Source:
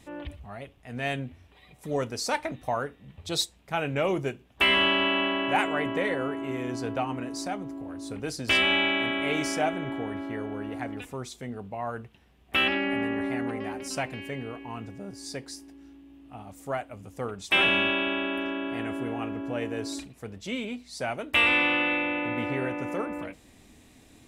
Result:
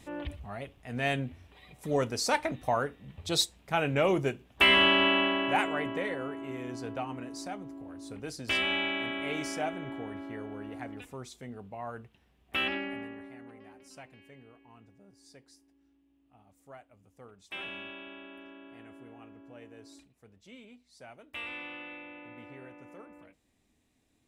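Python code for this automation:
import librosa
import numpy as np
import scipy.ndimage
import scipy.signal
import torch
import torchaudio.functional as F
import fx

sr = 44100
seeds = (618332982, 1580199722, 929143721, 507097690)

y = fx.gain(x, sr, db=fx.line((5.08, 0.5), (6.16, -6.5), (12.75, -6.5), (13.31, -18.5)))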